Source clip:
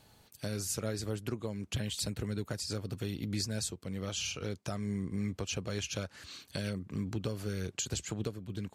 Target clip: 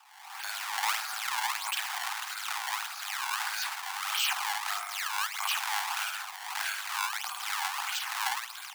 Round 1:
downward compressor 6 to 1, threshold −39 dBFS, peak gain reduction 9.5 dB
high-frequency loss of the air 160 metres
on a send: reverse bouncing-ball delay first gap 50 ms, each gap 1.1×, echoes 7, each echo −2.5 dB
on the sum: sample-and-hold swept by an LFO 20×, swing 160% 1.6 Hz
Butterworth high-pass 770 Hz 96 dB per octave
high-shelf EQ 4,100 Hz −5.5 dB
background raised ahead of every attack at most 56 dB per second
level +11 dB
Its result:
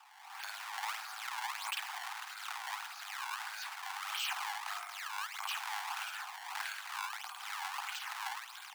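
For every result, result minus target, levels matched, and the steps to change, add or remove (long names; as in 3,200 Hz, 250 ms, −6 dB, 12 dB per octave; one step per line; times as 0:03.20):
downward compressor: peak gain reduction +9.5 dB; 8,000 Hz band −2.5 dB
remove: downward compressor 6 to 1, threshold −39 dBFS, peak gain reduction 9.5 dB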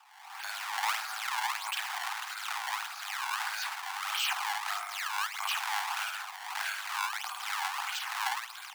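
8,000 Hz band −2.5 dB
remove: high-shelf EQ 4,100 Hz −5.5 dB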